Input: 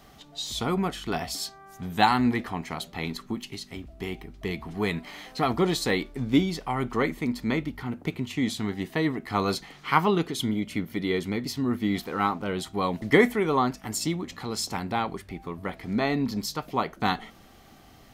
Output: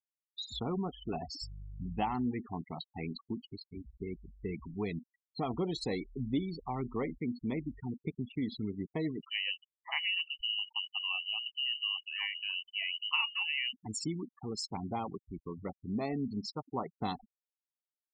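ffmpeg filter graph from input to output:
-filter_complex "[0:a]asettb=1/sr,asplit=3[a][b][c];[a]atrim=end=1.424[d];[b]atrim=start=1.42:end=2.15,asetpts=PTS-STARTPTS,afade=t=in:d=0.004:c=qsin,afade=t=out:st=0.726:d=0.004:c=qsin,aeval=exprs='val(0)+0.0126*(sin(2*PI*50*n/s)+sin(2*PI*2*50*n/s)/2+sin(2*PI*3*50*n/s)/3+sin(2*PI*4*50*n/s)/4+sin(2*PI*5*50*n/s)/5)':c=same,asuperstop=centerf=3900:order=20:qfactor=3.4[e];[c]atrim=start=2.146[f];[d][e]acrossfade=d=0.004:c1=hsin:c2=qsin[g];[g][f]acrossfade=d=0.004:c1=qsin:c2=hsin,asettb=1/sr,asplit=3[h][i][j];[h]atrim=end=9.224[k];[i]atrim=start=9.22:end=13.73,asetpts=PTS-STARTPTS,afade=t=in:d=0.004:c=qsin,afade=t=out:st=4.506:d=0.004:c=qsin,lowshelf=f=130:g=6,lowpass=f=2.6k:t=q:w=0.5098,lowpass=f=2.6k:t=q:w=0.6013,lowpass=f=2.6k:t=q:w=0.9,lowpass=f=2.6k:t=q:w=2.563,afreqshift=-3100[l];[j]atrim=start=13.726[m];[k][l]acrossfade=d=0.004:c1=hsin:c2=qsin[n];[n][m]acrossfade=d=0.004:c1=qsin:c2=hsin,afftfilt=real='re*gte(hypot(re,im),0.0501)':imag='im*gte(hypot(re,im),0.0501)':win_size=1024:overlap=0.75,equalizer=f=1.6k:t=o:w=0.59:g=-15,acompressor=threshold=-28dB:ratio=2,volume=-5dB"

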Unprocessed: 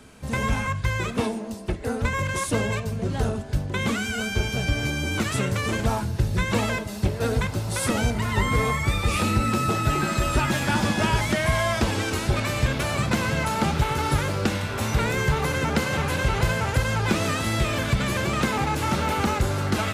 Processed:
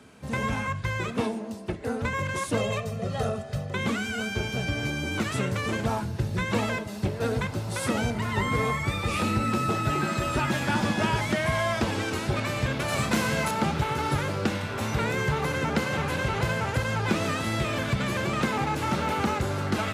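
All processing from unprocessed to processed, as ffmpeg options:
-filter_complex "[0:a]asettb=1/sr,asplit=3[a][b][c];[a]atrim=end=2.574[d];[b]atrim=start=2.57:end=3.74,asetpts=PTS-STARTPTS,afade=t=in:d=0.004:c=qsin,afade=t=out:st=1.166:d=0.004:c=qsin,lowshelf=f=100:g=-10,aecho=1:1:1.6:0.94,atrim=end_sample=51597[e];[c]atrim=start=3.736[f];[d][e]acrossfade=d=0.004:c1=hsin:c2=qsin[g];[g][f]acrossfade=d=0.004:c1=qsin:c2=hsin,asettb=1/sr,asplit=3[h][i][j];[h]atrim=end=12.884[k];[i]atrim=start=12.88:end=13.51,asetpts=PTS-STARTPTS,afade=t=in:d=0.004:c=qsin,afade=t=out:st=0.626:d=0.004:c=qsin,highshelf=f=6k:g=10,asplit=2[l][m];[m]adelay=32,volume=-5.5dB[n];[l][n]amix=inputs=2:normalize=0,atrim=end_sample=27783[o];[j]atrim=start=13.506[p];[k][o]acrossfade=d=0.004:c1=hsin:c2=qsin[q];[q][p]acrossfade=d=0.004:c1=qsin:c2=hsin,highpass=96,highshelf=f=5.1k:g=-6,volume=-2dB"

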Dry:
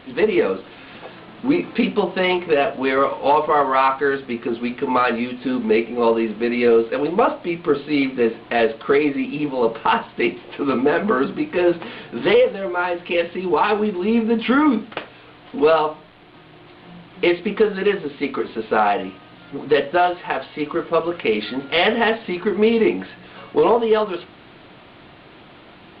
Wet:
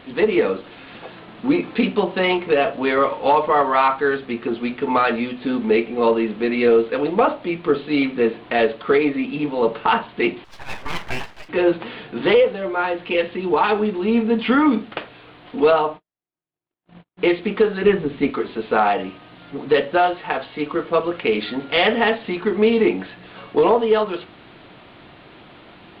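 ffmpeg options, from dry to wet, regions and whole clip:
-filter_complex "[0:a]asettb=1/sr,asplit=3[a][b][c];[a]atrim=end=10.444[d];[b]atrim=start=10.44:end=11.49,asetpts=PTS-STARTPTS,afade=t=in:d=0.004:c=qsin,afade=t=out:st=1.046:d=0.004:c=qsin,highpass=790,lowpass=2.1k,aeval=exprs='abs(val(0))':c=same[e];[c]atrim=start=11.486[f];[d][e]acrossfade=d=0.004:c1=hsin:c2=qsin[g];[g][f]acrossfade=d=0.004:c1=qsin:c2=hsin,asettb=1/sr,asplit=3[h][i][j];[h]atrim=end=15.714[k];[i]atrim=start=15.71:end=17.3,asetpts=PTS-STARTPTS,afade=t=in:d=0.004:c=qsin,afade=t=out:st=1.586:d=0.004:c=qsin,lowpass=f=2.9k:p=1,agate=range=-49dB:threshold=-40dB:ratio=16:release=100:detection=peak[l];[j]atrim=start=17.296[m];[k][l]acrossfade=d=0.004:c1=hsin:c2=qsin[n];[n][m]acrossfade=d=0.004:c1=qsin:c2=hsin,asettb=1/sr,asplit=3[o][p][q];[o]atrim=end=17.844[r];[p]atrim=start=17.84:end=18.3,asetpts=PTS-STARTPTS,afade=t=in:d=0.004:c=qsin,afade=t=out:st=0.456:d=0.004:c=qsin,lowpass=3.4k,lowshelf=f=230:g=12[s];[q]atrim=start=18.296[t];[r][s]acrossfade=d=0.004:c1=hsin:c2=qsin[u];[u][t]acrossfade=d=0.004:c1=qsin:c2=hsin"

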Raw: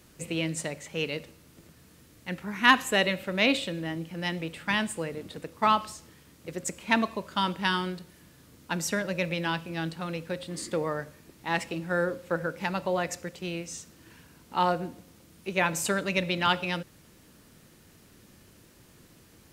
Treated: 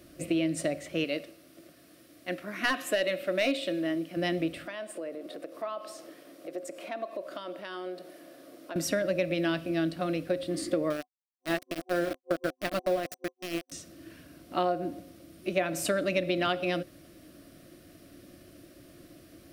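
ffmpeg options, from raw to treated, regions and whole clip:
-filter_complex "[0:a]asettb=1/sr,asplit=3[a][b][c];[a]atrim=end=1.044[d];[b]atrim=start=1.04:end=4.17,asetpts=PTS-STARTPTS,afade=t=in:d=0.004:c=qsin,afade=t=out:st=3.126:d=0.004:c=qsin,highpass=f=390:p=1,aeval=exprs='clip(val(0),-1,0.112)':c=same[e];[c]atrim=start=4.166[f];[d][e]acrossfade=d=0.004:c1=hsin:c2=qsin[g];[g][f]acrossfade=d=0.004:c1=qsin:c2=hsin,asettb=1/sr,asplit=3[h][i][j];[h]atrim=end=4.674[k];[i]atrim=start=4.67:end=8.76,asetpts=PTS-STARTPTS,afade=t=in:d=0.004:c=qsin,afade=t=out:st=4.086:d=0.004:c=qsin,equalizer=f=630:t=o:w=1.9:g=8.5,acompressor=threshold=-41dB:ratio=3:attack=3.2:release=140:knee=1:detection=peak,highpass=330[l];[j]atrim=start=8.756[m];[k][l]acrossfade=d=0.004:c1=hsin:c2=qsin[n];[n][m]acrossfade=d=0.004:c1=qsin:c2=hsin,asettb=1/sr,asplit=3[o][p][q];[o]atrim=end=10.904[r];[p]atrim=start=10.9:end=13.72,asetpts=PTS-STARTPTS,afade=t=in:d=0.004:c=qsin,afade=t=out:st=2.816:d=0.004:c=qsin,tremolo=f=6.4:d=0.38,aeval=exprs='val(0)*gte(abs(val(0)),0.0299)':c=same[s];[q]atrim=start=13.716[t];[r][s]acrossfade=d=0.004:c1=hsin:c2=qsin[u];[u][t]acrossfade=d=0.004:c1=qsin:c2=hsin,superequalizer=6b=3.16:8b=2.82:9b=0.355:15b=0.562,acompressor=threshold=-24dB:ratio=6"

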